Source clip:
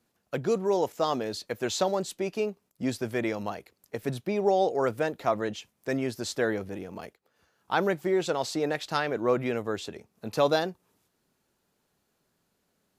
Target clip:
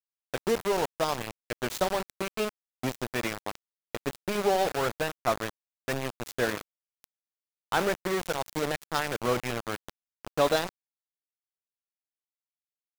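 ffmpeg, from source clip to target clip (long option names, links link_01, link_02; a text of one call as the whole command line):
ffmpeg -i in.wav -af "aecho=1:1:17|73:0.141|0.178,aeval=exprs='val(0)*gte(abs(val(0)),0.0501)':channel_layout=same,adynamicequalizer=threshold=0.0158:dfrequency=360:dqfactor=0.86:tfrequency=360:tqfactor=0.86:attack=5:release=100:ratio=0.375:range=2.5:mode=cutabove:tftype=bell" out.wav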